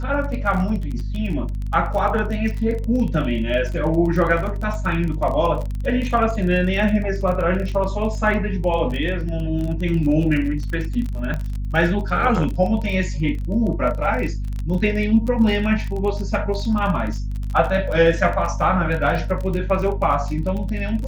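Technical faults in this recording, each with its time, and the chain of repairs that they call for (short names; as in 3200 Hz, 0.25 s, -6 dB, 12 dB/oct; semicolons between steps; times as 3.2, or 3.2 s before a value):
crackle 29/s -26 dBFS
hum 50 Hz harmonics 5 -25 dBFS
11.34 pop -15 dBFS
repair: de-click; de-hum 50 Hz, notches 5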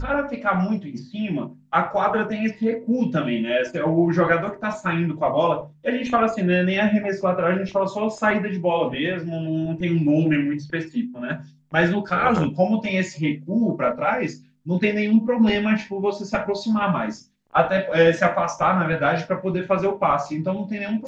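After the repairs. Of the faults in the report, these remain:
none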